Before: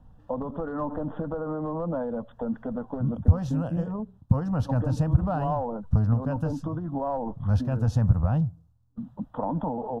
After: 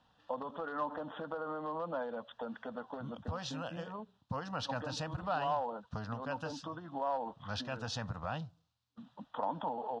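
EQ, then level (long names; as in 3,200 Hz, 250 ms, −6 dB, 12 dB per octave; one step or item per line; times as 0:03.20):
resonant band-pass 3,800 Hz, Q 1.5
high-frequency loss of the air 70 metres
+13.0 dB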